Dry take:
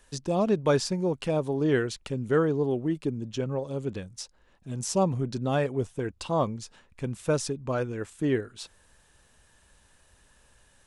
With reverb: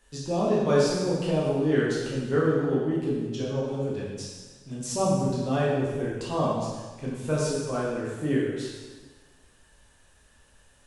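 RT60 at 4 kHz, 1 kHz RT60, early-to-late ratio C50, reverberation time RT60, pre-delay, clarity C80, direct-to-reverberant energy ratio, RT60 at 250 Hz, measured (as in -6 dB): 1.3 s, 1.4 s, -0.5 dB, 1.4 s, 6 ms, 2.0 dB, -6.5 dB, 1.4 s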